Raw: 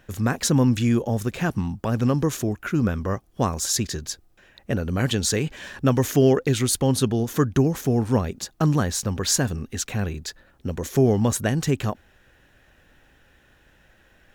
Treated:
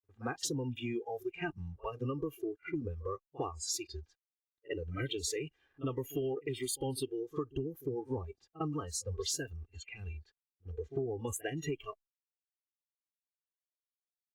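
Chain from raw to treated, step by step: crossover distortion -45 dBFS; low-pass opened by the level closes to 1200 Hz, open at -20 dBFS; spectral noise reduction 25 dB; comb 2.5 ms, depth 93%; reverse echo 54 ms -24 dB; compressor 6:1, threshold -27 dBFS, peak gain reduction 15.5 dB; gain -6.5 dB; Opus 64 kbps 48000 Hz

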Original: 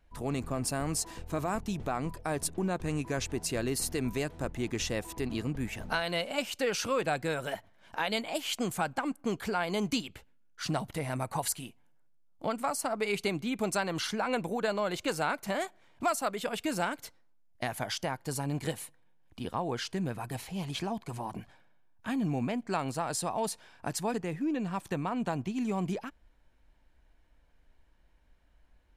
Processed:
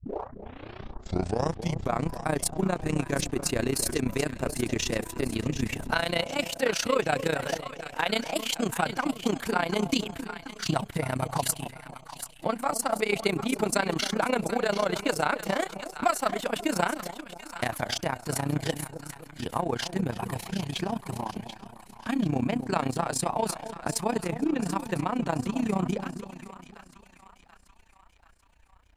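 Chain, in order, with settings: tape start at the beginning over 2.03 s; split-band echo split 900 Hz, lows 0.265 s, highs 0.738 s, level -10 dB; in parallel at -10 dB: crossover distortion -43 dBFS; on the sum: AM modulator 30 Hz, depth 75%; gain +5.5 dB

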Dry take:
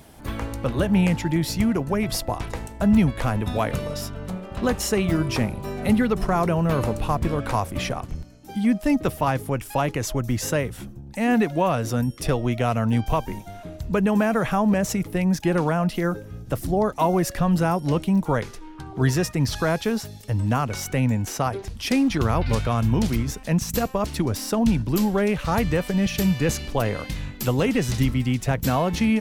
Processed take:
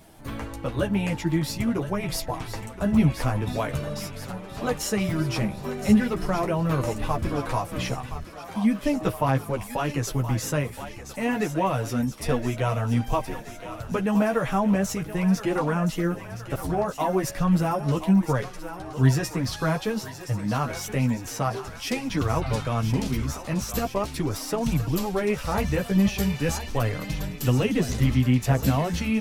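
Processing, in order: thinning echo 1.021 s, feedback 65%, high-pass 560 Hz, level -10 dB; chorus voices 4, 0.4 Hz, delay 11 ms, depth 4.8 ms

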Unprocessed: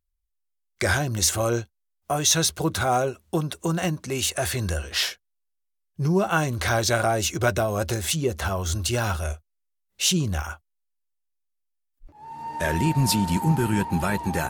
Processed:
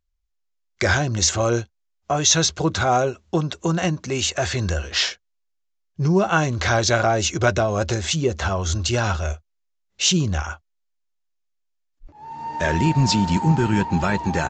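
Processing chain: downsampling 16000 Hz; gain +3.5 dB

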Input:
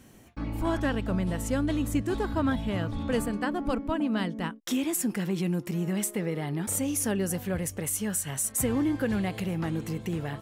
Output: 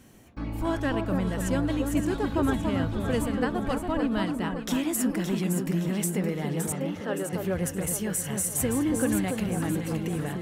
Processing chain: 6.72–7.33 speaker cabinet 360–3400 Hz, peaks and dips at 550 Hz +4 dB, 1300 Hz +5 dB, 2300 Hz -8 dB; on a send: echo with dull and thin repeats by turns 0.284 s, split 1300 Hz, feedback 68%, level -3.5 dB

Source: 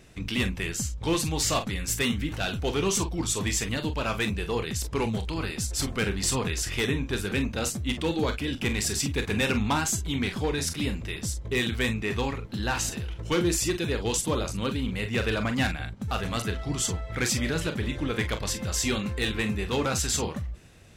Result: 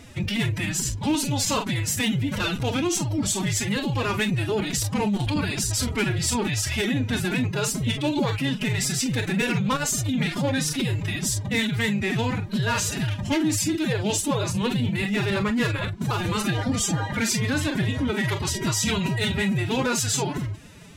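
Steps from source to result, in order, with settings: notch 410 Hz, Q 13; in parallel at +2.5 dB: vocal rider 0.5 s; on the sum: limiter -14.5 dBFS, peak gain reduction 6.5 dB; formant-preserving pitch shift +10.5 st; core saturation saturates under 210 Hz

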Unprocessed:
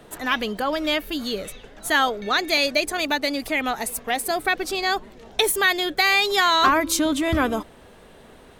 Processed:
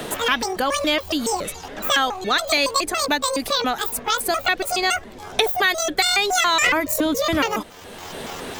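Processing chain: trilling pitch shifter +10.5 st, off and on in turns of 0.14 s; three-band squash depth 70%; gain +1.5 dB

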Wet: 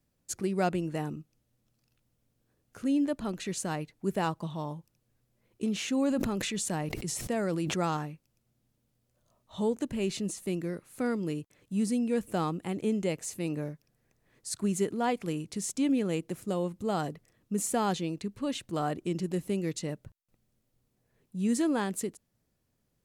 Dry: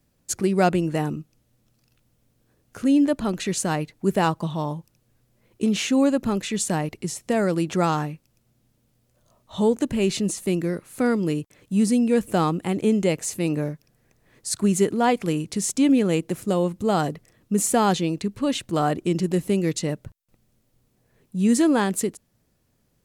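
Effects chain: 5.76–7.97 sustainer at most 21 dB/s; gain -9 dB

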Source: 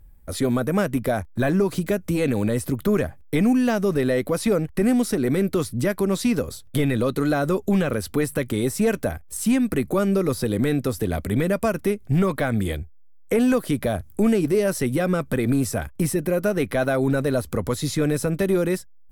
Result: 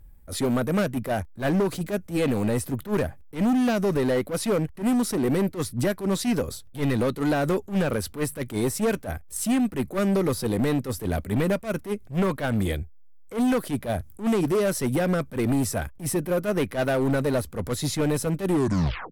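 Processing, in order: tape stop at the end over 0.65 s; overloaded stage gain 19 dB; attack slew limiter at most 230 dB/s

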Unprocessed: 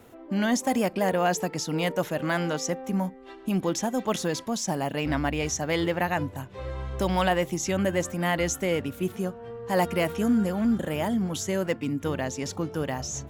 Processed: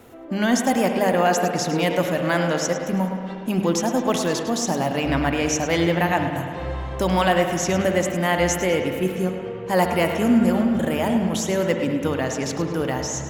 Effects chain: notches 50/100/150/200 Hz; 10.39–10.89 negative-ratio compressor -26 dBFS; tape echo 0.104 s, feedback 56%, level -9 dB, low-pass 5800 Hz; spring tank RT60 2.5 s, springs 59 ms, chirp 50 ms, DRR 6.5 dB; gain +4.5 dB

